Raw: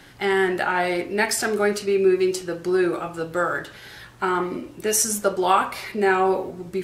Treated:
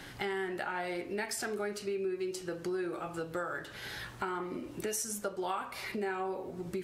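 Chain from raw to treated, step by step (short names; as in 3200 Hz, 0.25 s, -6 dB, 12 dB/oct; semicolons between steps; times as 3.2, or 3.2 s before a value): compressor 4:1, threshold -36 dBFS, peak gain reduction 18.5 dB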